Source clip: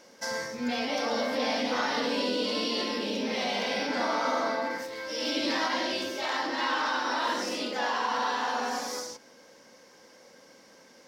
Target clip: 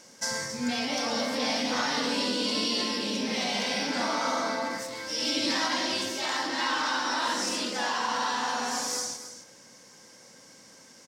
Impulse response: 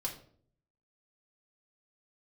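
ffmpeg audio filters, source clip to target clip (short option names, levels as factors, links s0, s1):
-af "equalizer=f=125:t=o:w=1:g=9,equalizer=f=500:t=o:w=1:g=-4,equalizer=f=8000:t=o:w=1:g=12,aecho=1:1:271:0.266"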